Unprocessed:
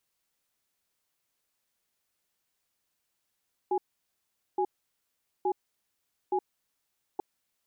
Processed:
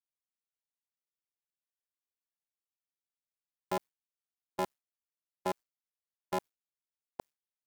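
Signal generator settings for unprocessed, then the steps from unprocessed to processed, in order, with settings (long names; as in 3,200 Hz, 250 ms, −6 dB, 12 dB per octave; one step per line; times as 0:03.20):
tone pair in a cadence 374 Hz, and 828 Hz, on 0.07 s, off 0.80 s, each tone −27 dBFS 3.49 s
sub-harmonics by changed cycles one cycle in 2, muted
noise gate with hold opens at −23 dBFS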